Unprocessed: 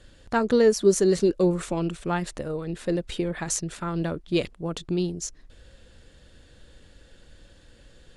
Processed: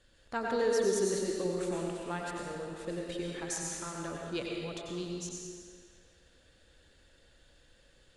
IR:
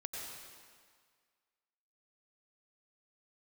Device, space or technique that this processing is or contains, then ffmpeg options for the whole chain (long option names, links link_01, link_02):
stairwell: -filter_complex "[0:a]lowshelf=frequency=400:gain=-6.5[link_01];[1:a]atrim=start_sample=2205[link_02];[link_01][link_02]afir=irnorm=-1:irlink=0,volume=-5.5dB"